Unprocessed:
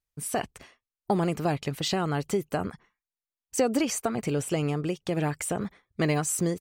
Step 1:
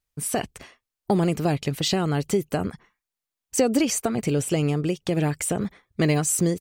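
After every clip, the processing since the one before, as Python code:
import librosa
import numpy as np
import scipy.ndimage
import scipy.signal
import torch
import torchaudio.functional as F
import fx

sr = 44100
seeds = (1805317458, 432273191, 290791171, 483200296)

y = fx.dynamic_eq(x, sr, hz=1100.0, q=0.78, threshold_db=-42.0, ratio=4.0, max_db=-6)
y = y * librosa.db_to_amplitude(5.5)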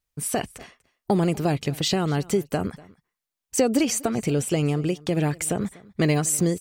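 y = x + 10.0 ** (-22.5 / 20.0) * np.pad(x, (int(243 * sr / 1000.0), 0))[:len(x)]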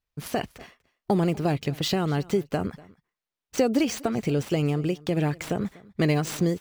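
y = scipy.ndimage.median_filter(x, 5, mode='constant')
y = y * librosa.db_to_amplitude(-1.5)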